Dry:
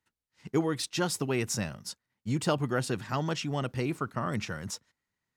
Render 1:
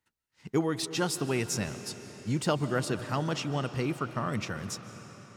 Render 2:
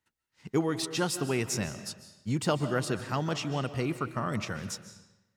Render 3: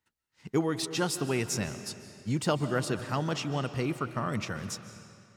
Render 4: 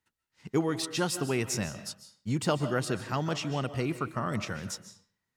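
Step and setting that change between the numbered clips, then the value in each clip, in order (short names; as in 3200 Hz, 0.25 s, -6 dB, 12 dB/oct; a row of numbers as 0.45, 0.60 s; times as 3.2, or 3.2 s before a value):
digital reverb, RT60: 4.9, 1, 2.4, 0.49 s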